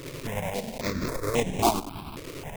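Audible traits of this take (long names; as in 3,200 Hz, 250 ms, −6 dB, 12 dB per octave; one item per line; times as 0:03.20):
a quantiser's noise floor 6 bits, dither triangular
tremolo saw up 10 Hz, depth 50%
aliases and images of a low sample rate 1,600 Hz, jitter 20%
notches that jump at a steady rate 3.7 Hz 210–4,600 Hz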